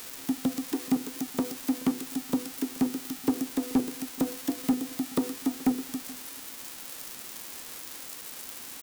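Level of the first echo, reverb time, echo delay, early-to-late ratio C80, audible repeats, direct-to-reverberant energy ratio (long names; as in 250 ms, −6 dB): −21.0 dB, no reverb audible, 427 ms, no reverb audible, 1, no reverb audible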